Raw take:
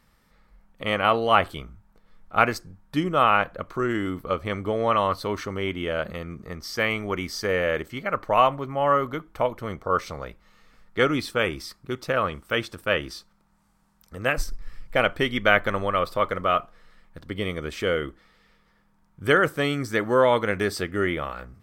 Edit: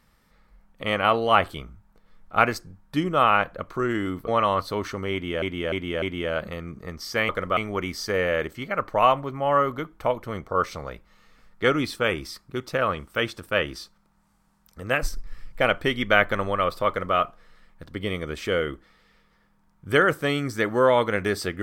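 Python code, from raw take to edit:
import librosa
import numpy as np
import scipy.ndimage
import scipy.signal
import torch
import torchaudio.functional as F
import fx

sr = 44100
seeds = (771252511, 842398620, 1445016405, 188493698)

y = fx.edit(x, sr, fx.cut(start_s=4.28, length_s=0.53),
    fx.repeat(start_s=5.65, length_s=0.3, count=4),
    fx.duplicate(start_s=16.23, length_s=0.28, to_s=6.92), tone=tone)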